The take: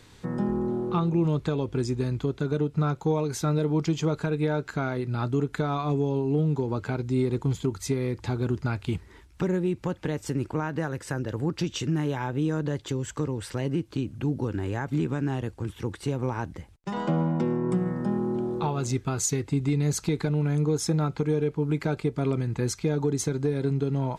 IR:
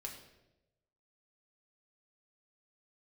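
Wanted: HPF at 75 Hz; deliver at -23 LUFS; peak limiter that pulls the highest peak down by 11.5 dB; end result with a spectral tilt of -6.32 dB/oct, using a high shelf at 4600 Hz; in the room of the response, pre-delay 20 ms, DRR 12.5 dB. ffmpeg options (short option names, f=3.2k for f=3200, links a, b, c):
-filter_complex "[0:a]highpass=75,highshelf=f=4.6k:g=-5,alimiter=level_in=1dB:limit=-24dB:level=0:latency=1,volume=-1dB,asplit=2[a][b];[1:a]atrim=start_sample=2205,adelay=20[c];[b][c]afir=irnorm=-1:irlink=0,volume=-9.5dB[d];[a][d]amix=inputs=2:normalize=0,volume=11dB"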